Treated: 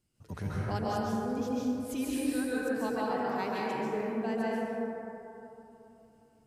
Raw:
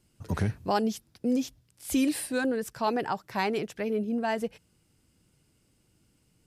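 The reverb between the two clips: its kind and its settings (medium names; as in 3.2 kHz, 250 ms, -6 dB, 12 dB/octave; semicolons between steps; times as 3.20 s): plate-style reverb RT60 3.2 s, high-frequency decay 0.3×, pre-delay 120 ms, DRR -7 dB; trim -11 dB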